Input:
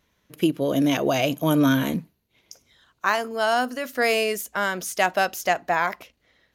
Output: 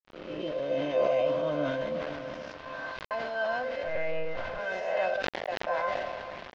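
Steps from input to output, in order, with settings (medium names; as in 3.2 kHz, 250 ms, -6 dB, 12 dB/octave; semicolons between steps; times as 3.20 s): reverse spectral sustain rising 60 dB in 1.50 s; bass shelf 74 Hz +8 dB; feedback comb 74 Hz, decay 0.2 s, harmonics all, mix 60%; echo that smears into a reverb 483 ms, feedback 45%, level -10 dB; 3.83–4.59 s: monotone LPC vocoder at 8 kHz 160 Hz; peaking EQ 620 Hz +14 dB 0.5 oct; 1.98–3.11 s: compressor with a negative ratio -25 dBFS, ratio -0.5; 5.14–5.67 s: gate -10 dBFS, range -14 dB; feedback comb 520 Hz, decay 0.19 s, harmonics all, mix 90%; small samples zeroed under -39.5 dBFS; Bessel low-pass 3.1 kHz, order 8; decay stretcher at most 30 dB/s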